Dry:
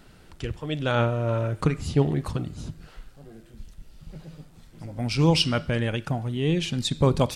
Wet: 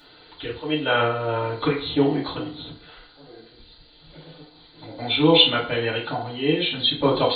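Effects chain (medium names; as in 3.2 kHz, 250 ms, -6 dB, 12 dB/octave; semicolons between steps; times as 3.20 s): knee-point frequency compression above 3.1 kHz 4:1; tone controls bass -14 dB, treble +10 dB; FDN reverb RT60 0.47 s, low-frequency decay 0.75×, high-frequency decay 0.65×, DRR -6.5 dB; trim -2 dB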